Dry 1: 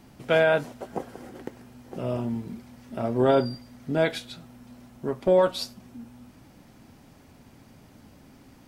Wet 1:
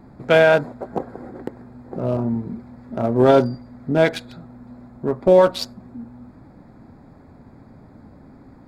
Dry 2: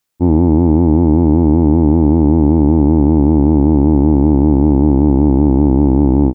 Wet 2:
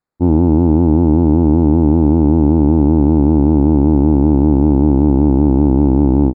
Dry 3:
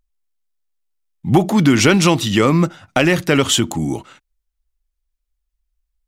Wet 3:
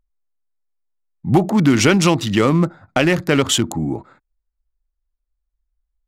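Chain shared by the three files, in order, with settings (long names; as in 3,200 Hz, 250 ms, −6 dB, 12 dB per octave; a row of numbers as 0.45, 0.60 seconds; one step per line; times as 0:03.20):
adaptive Wiener filter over 15 samples
normalise the peak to −2 dBFS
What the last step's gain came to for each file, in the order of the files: +7.0, −0.5, −1.0 decibels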